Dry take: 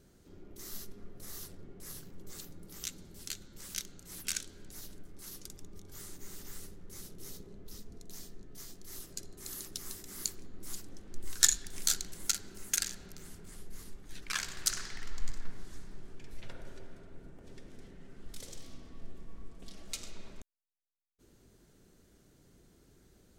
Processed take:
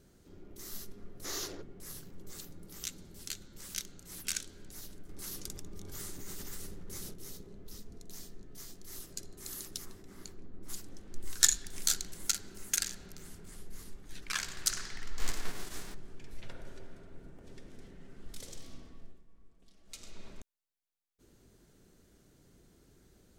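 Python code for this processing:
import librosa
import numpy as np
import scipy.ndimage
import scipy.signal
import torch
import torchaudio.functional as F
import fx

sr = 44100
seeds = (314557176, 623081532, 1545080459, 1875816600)

y = fx.spec_box(x, sr, start_s=1.25, length_s=0.37, low_hz=260.0, high_hz=7300.0, gain_db=12)
y = fx.env_flatten(y, sr, amount_pct=50, at=(5.09, 7.14))
y = fx.lowpass(y, sr, hz=1100.0, slope=6, at=(9.84, 10.68), fade=0.02)
y = fx.envelope_flatten(y, sr, power=0.6, at=(15.18, 15.93), fade=0.02)
y = fx.edit(y, sr, fx.fade_down_up(start_s=18.79, length_s=1.48, db=-15.0, fade_s=0.44), tone=tone)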